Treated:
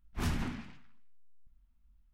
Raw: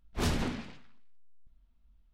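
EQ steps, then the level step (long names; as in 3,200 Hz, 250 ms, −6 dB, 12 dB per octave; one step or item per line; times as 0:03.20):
graphic EQ with 10 bands 500 Hz −11 dB, 4,000 Hz −6 dB, 8,000 Hz −4 dB
−1.5 dB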